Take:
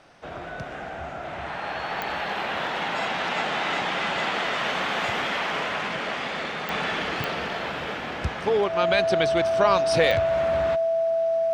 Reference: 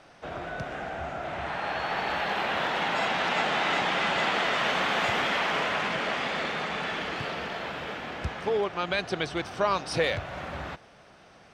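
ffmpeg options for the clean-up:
-af "adeclick=t=4,bandreject=f=660:w=30,asetnsamples=n=441:p=0,asendcmd='6.69 volume volume -4.5dB',volume=1"

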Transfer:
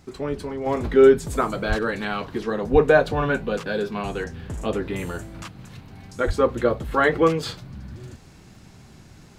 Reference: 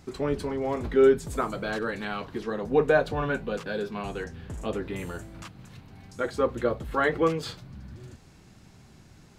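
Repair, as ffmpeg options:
-filter_complex "[0:a]adeclick=t=4,asplit=3[s0][s1][s2];[s0]afade=t=out:st=1.68:d=0.02[s3];[s1]highpass=f=140:w=0.5412,highpass=f=140:w=1.3066,afade=t=in:st=1.68:d=0.02,afade=t=out:st=1.8:d=0.02[s4];[s2]afade=t=in:st=1.8:d=0.02[s5];[s3][s4][s5]amix=inputs=3:normalize=0,asplit=3[s6][s7][s8];[s6]afade=t=out:st=2.72:d=0.02[s9];[s7]highpass=f=140:w=0.5412,highpass=f=140:w=1.3066,afade=t=in:st=2.72:d=0.02,afade=t=out:st=2.84:d=0.02[s10];[s8]afade=t=in:st=2.84:d=0.02[s11];[s9][s10][s11]amix=inputs=3:normalize=0,asplit=3[s12][s13][s14];[s12]afade=t=out:st=6.26:d=0.02[s15];[s13]highpass=f=140:w=0.5412,highpass=f=140:w=1.3066,afade=t=in:st=6.26:d=0.02,afade=t=out:st=6.38:d=0.02[s16];[s14]afade=t=in:st=6.38:d=0.02[s17];[s15][s16][s17]amix=inputs=3:normalize=0,asetnsamples=n=441:p=0,asendcmd='0.66 volume volume -5.5dB',volume=1"

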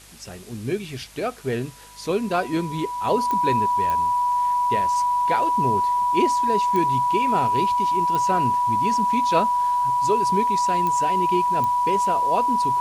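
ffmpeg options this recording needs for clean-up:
-af "adeclick=t=4,bandreject=f=50.8:t=h:w=4,bandreject=f=101.6:t=h:w=4,bandreject=f=152.4:t=h:w=4,bandreject=f=203.2:t=h:w=4,bandreject=f=254:t=h:w=4,bandreject=f=980:w=30,afwtdn=0.005"

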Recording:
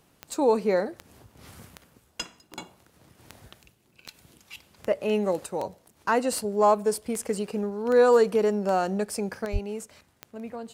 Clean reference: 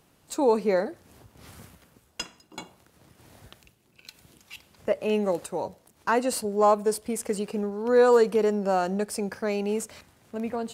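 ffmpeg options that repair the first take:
-filter_complex "[0:a]adeclick=t=4,asplit=3[s0][s1][s2];[s0]afade=t=out:st=9.52:d=0.02[s3];[s1]highpass=f=140:w=0.5412,highpass=f=140:w=1.3066,afade=t=in:st=9.52:d=0.02,afade=t=out:st=9.64:d=0.02[s4];[s2]afade=t=in:st=9.64:d=0.02[s5];[s3][s4][s5]amix=inputs=3:normalize=0,asetnsamples=n=441:p=0,asendcmd='9.45 volume volume 6.5dB',volume=1"

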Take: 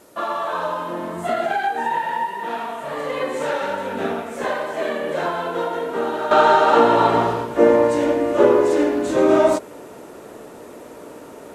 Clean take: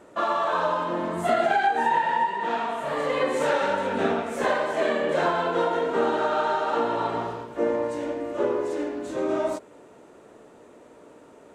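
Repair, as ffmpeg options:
-af "agate=range=0.0891:threshold=0.0282,asetnsamples=n=441:p=0,asendcmd='6.31 volume volume -11dB',volume=1"

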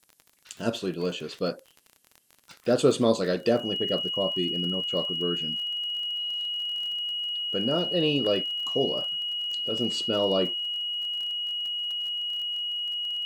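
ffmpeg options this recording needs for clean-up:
-af "adeclick=t=4,bandreject=f=2900:w=30,agate=range=0.0891:threshold=0.00316"

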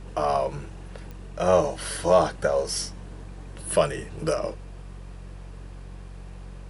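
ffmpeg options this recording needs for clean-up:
-af "adeclick=t=4,bandreject=f=46.1:t=h:w=4,bandreject=f=92.2:t=h:w=4,bandreject=f=138.3:t=h:w=4,bandreject=f=184.4:t=h:w=4"

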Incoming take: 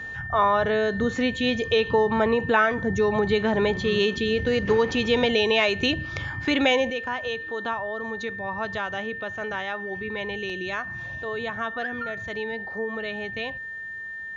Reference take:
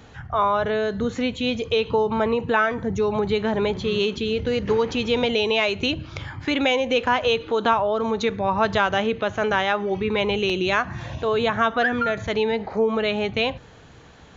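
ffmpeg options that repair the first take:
-af "bandreject=f=1800:w=30,asetnsamples=n=441:p=0,asendcmd='6.9 volume volume 10dB',volume=1"

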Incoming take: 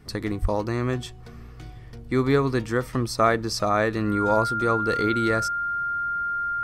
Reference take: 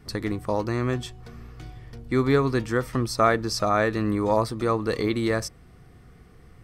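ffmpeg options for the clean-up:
-filter_complex "[0:a]bandreject=f=1400:w=30,asplit=3[s0][s1][s2];[s0]afade=t=out:st=0.41:d=0.02[s3];[s1]highpass=f=140:w=0.5412,highpass=f=140:w=1.3066,afade=t=in:st=0.41:d=0.02,afade=t=out:st=0.53:d=0.02[s4];[s2]afade=t=in:st=0.53:d=0.02[s5];[s3][s4][s5]amix=inputs=3:normalize=0"

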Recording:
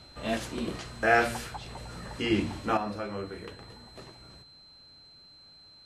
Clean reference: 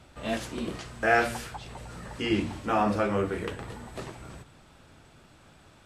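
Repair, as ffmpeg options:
-af "bandreject=f=4100:w=30,asetnsamples=n=441:p=0,asendcmd='2.77 volume volume 9dB',volume=1"

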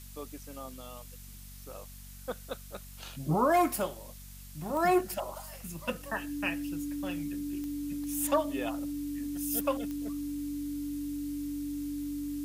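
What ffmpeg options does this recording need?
-af "adeclick=t=4,bandreject=f=47.4:t=h:w=4,bandreject=f=94.8:t=h:w=4,bandreject=f=142.2:t=h:w=4,bandreject=f=189.6:t=h:w=4,bandreject=f=237:t=h:w=4,bandreject=f=290:w=30,afftdn=nr=29:nf=-48"

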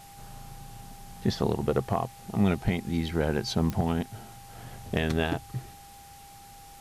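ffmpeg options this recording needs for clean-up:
-af "adeclick=t=4,bandreject=f=800:w=30,afwtdn=0.0025"

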